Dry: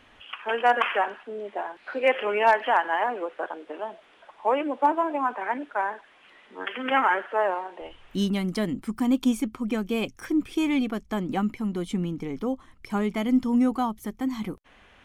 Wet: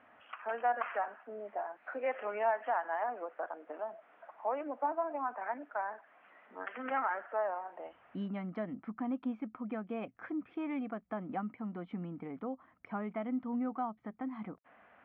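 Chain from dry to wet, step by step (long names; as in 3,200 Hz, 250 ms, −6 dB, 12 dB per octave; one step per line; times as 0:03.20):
loudspeaker in its box 170–2,100 Hz, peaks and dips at 380 Hz −7 dB, 680 Hz +8 dB, 1,300 Hz +4 dB
downward compressor 1.5 to 1, threshold −38 dBFS, peak gain reduction 10 dB
level −6 dB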